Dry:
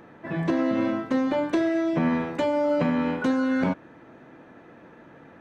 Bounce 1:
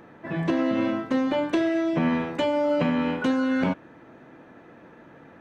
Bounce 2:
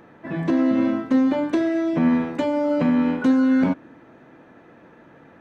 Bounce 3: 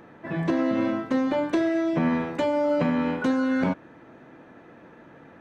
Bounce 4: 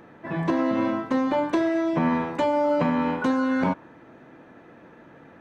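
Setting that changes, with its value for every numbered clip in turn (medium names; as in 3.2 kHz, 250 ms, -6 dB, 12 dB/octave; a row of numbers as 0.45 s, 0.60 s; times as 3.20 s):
dynamic bell, frequency: 2.9 kHz, 260 Hz, 8.3 kHz, 970 Hz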